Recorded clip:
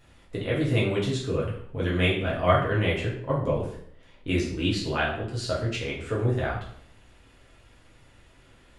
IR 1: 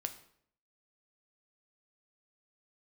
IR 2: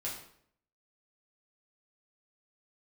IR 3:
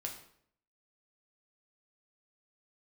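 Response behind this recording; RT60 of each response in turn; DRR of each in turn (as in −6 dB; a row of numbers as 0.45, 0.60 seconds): 2; 0.65, 0.65, 0.65 seconds; 7.0, −6.0, 0.5 decibels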